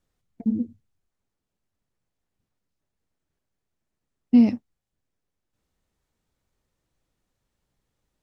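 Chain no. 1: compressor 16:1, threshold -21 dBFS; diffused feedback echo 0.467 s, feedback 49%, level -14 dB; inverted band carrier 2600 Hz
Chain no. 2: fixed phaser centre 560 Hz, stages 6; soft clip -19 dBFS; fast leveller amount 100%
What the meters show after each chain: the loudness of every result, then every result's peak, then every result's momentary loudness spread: -29.0, -29.5 LUFS; -14.0, -12.0 dBFS; 23, 24 LU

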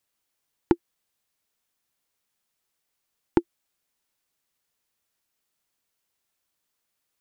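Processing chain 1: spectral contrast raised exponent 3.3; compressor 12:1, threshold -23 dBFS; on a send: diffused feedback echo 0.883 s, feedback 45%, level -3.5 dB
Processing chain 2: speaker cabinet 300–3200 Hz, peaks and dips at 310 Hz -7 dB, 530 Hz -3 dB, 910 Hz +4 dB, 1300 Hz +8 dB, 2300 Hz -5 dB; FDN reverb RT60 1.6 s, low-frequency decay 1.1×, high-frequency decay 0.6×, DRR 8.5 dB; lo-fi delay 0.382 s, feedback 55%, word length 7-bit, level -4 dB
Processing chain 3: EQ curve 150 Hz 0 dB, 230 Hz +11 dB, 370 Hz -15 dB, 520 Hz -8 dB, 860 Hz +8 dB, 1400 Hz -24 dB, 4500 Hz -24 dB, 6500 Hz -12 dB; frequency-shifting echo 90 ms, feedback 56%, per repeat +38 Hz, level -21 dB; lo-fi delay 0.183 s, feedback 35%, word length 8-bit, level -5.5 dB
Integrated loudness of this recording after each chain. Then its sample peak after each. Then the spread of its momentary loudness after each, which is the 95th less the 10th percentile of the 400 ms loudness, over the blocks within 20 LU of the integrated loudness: -40.5, -35.5, -30.5 LUFS; -15.0, -8.5, -7.5 dBFS; 22, 17, 16 LU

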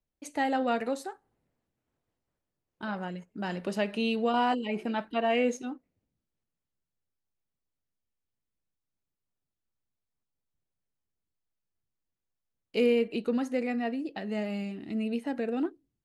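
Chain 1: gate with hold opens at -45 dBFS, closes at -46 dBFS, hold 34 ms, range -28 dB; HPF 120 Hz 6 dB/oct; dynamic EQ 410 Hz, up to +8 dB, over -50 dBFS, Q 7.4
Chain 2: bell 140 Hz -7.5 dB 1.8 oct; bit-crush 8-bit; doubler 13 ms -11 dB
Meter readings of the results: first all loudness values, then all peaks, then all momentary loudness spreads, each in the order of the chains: -30.5, -32.0 LUFS; -13.5, -15.0 dBFS; 12, 12 LU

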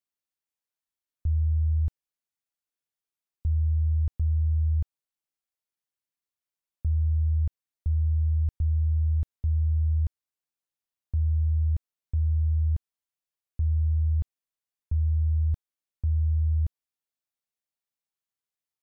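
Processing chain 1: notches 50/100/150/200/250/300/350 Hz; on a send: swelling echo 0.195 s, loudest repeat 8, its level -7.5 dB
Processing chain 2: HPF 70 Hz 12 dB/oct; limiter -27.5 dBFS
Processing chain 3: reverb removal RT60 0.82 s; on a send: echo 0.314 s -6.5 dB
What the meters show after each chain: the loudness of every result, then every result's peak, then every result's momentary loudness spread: -29.0, -34.5, -30.5 LUFS; -15.0, -27.5, -18.0 dBFS; 13, 8, 10 LU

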